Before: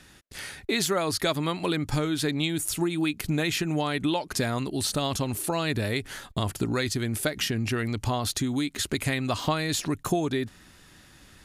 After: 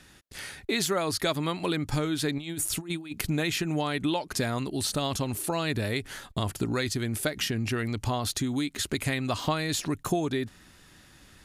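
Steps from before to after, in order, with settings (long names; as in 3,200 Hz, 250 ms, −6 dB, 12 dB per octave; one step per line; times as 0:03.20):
0:02.38–0:03.26: compressor whose output falls as the input rises −31 dBFS, ratio −0.5
level −1.5 dB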